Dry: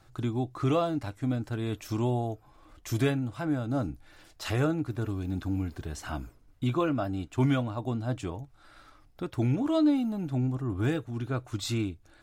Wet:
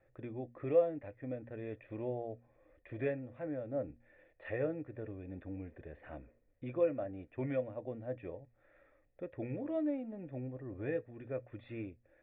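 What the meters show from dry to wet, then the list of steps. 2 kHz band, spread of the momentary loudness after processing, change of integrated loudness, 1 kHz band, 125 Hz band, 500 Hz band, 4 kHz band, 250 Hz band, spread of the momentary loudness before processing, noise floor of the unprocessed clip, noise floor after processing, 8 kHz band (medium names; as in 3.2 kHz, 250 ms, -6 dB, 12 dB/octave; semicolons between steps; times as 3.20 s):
-10.0 dB, 15 LU, -9.0 dB, -14.5 dB, -16.0 dB, -2.5 dB, under -25 dB, -12.5 dB, 12 LU, -59 dBFS, -71 dBFS, under -35 dB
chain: cascade formant filter e; de-hum 118.6 Hz, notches 2; trim +4.5 dB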